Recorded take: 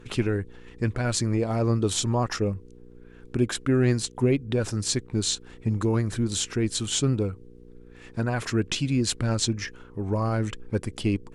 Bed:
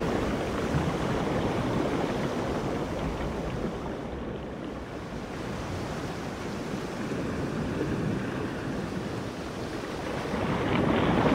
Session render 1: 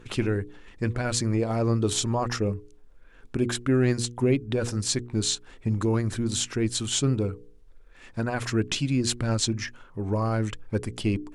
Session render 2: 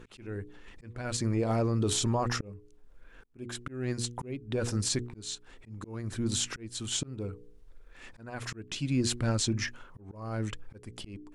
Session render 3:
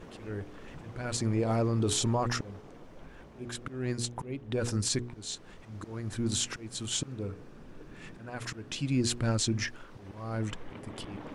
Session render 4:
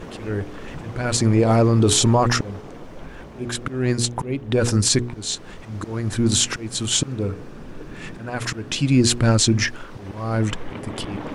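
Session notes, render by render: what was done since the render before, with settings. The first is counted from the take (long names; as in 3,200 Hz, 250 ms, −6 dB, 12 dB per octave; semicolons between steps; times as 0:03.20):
hum removal 60 Hz, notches 8
volume swells 606 ms; brickwall limiter −19.5 dBFS, peak gain reduction 8.5 dB
mix in bed −21 dB
level +12 dB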